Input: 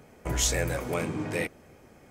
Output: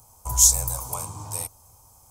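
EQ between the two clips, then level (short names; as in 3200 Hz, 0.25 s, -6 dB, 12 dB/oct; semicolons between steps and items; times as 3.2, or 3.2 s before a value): EQ curve 110 Hz 0 dB, 170 Hz -16 dB, 360 Hz -21 dB, 640 Hz -11 dB, 980 Hz +5 dB, 1800 Hz -26 dB, 6000 Hz +8 dB, 9800 Hz +14 dB; +3.0 dB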